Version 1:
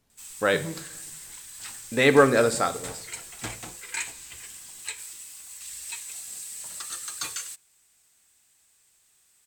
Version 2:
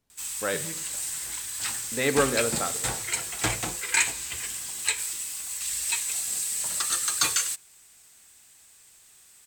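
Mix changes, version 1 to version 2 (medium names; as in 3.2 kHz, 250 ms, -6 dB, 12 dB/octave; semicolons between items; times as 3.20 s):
speech -6.5 dB; background +9.0 dB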